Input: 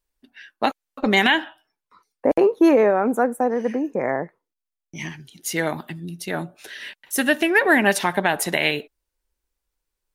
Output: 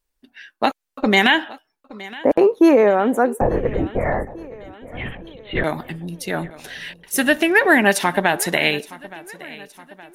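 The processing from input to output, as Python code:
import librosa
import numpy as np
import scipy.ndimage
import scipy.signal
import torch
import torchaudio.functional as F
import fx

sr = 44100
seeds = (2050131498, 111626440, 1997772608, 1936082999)

y = fx.lpc_vocoder(x, sr, seeds[0], excitation='whisper', order=10, at=(3.41, 5.64))
y = fx.echo_feedback(y, sr, ms=869, feedback_pct=53, wet_db=-19.5)
y = F.gain(torch.from_numpy(y), 2.5).numpy()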